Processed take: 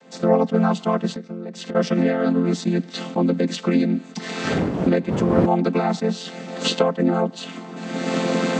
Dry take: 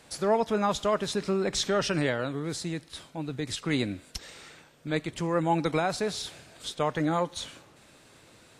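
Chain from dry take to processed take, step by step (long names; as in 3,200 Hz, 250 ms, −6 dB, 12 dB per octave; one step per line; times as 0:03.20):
channel vocoder with a chord as carrier major triad, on F3
0:04.43–0:05.45: wind on the microphone 280 Hz −31 dBFS
camcorder AGC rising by 34 dB per second
high-pass filter 140 Hz
0:01.11–0:01.75: downward compressor 8 to 1, threshold −37 dBFS, peak gain reduction 14.5 dB
level that may rise only so fast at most 450 dB per second
level +8.5 dB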